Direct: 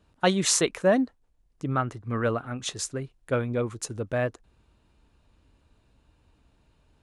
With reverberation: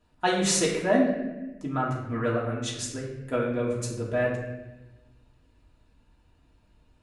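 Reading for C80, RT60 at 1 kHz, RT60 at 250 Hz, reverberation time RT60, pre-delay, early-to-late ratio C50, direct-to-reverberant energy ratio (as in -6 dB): 5.5 dB, 0.95 s, 1.6 s, 1.1 s, 3 ms, 3.5 dB, -5.0 dB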